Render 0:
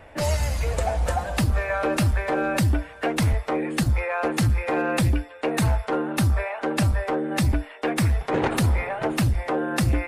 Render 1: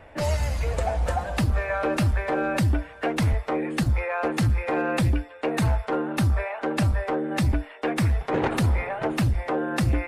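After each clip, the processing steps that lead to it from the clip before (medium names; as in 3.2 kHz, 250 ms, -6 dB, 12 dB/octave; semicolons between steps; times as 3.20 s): treble shelf 5.4 kHz -6.5 dB; trim -1 dB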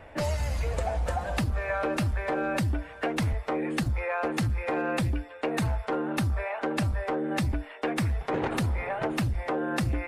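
compression, threshold -25 dBFS, peak gain reduction 7 dB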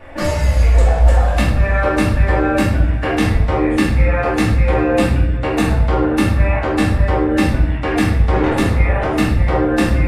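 simulated room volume 220 m³, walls mixed, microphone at 2.4 m; trim +3.5 dB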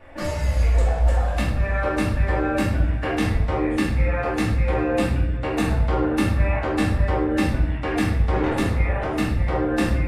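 level rider; trim -8.5 dB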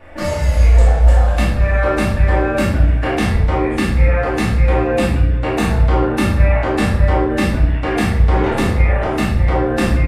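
doubling 34 ms -5 dB; trim +5 dB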